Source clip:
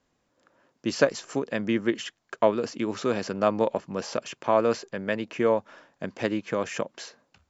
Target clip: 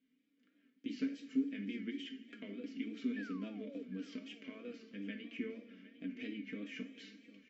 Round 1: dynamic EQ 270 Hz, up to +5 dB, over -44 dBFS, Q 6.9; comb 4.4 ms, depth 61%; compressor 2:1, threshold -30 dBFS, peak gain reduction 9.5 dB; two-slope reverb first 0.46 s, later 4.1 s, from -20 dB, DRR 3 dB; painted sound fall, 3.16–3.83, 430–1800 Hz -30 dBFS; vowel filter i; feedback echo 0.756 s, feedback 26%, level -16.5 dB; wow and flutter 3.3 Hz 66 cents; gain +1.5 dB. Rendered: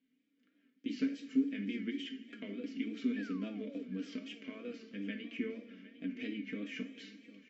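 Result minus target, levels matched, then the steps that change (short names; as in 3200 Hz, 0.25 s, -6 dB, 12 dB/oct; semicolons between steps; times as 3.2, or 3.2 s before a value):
compressor: peak gain reduction -3.5 dB
change: compressor 2:1, threshold -37 dBFS, peak gain reduction 13 dB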